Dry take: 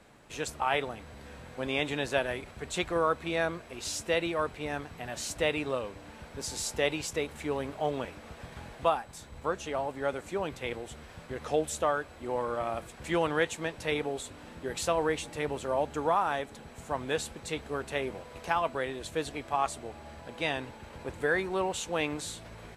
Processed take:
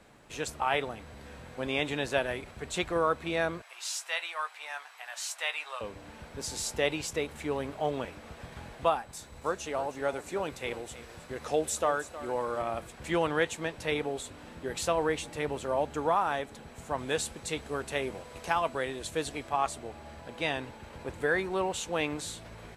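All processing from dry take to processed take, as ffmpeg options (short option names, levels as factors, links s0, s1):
-filter_complex "[0:a]asettb=1/sr,asplit=3[s0][s1][s2];[s0]atrim=end=3.624[s3];[s1]atrim=start=3.62:end=5.81,asetpts=PTS-STARTPTS,afade=t=in:d=0.004:c=qsin,afade=t=out:st=2.186:d=0.004:c=qsin,highpass=f=840:w=0.5412,highpass=f=840:w=1.3066,asplit=2[s4][s5];[s5]adelay=17,volume=0.282[s6];[s4][s6]amix=inputs=2:normalize=0,atrim=end_sample=96579[s7];[s2]atrim=start=5.806[s8];[s3][s7]acrossfade=d=0.004:c1=hsin:c2=qsin[s9];[s9][s8]acrossfade=d=0.004:c1=qsin:c2=hsin,asettb=1/sr,asplit=3[s10][s11][s12];[s10]atrim=end=9.124[s13];[s11]atrim=start=9.12:end=12.62,asetpts=PTS-STARTPTS,afade=t=in:d=0.004:c=qsin,afade=t=out:st=3.496:d=0.004:c=qsin,bass=f=250:g=-3,treble=f=4000:g=4,bandreject=f=3200:w=25,aecho=1:1:315:0.188,atrim=end_sample=154350[s14];[s12]atrim=start=12.616[s15];[s13][s14]acrossfade=d=0.004:c1=hsin:c2=qsin[s16];[s16][s15]acrossfade=d=0.004:c1=qsin:c2=hsin,asettb=1/sr,asplit=3[s17][s18][s19];[s17]atrim=end=16.984[s20];[s18]atrim=start=16.98:end=19.48,asetpts=PTS-STARTPTS,afade=t=in:d=0.004:c=qsin,afade=t=out:st=2.496:d=0.004:c=qsin,lowpass=11000,highshelf=f=7100:g=9.5[s21];[s19]atrim=start=19.476[s22];[s20][s21]acrossfade=d=0.004:c1=hsin:c2=qsin[s23];[s23][s22]acrossfade=d=0.004:c1=qsin:c2=hsin"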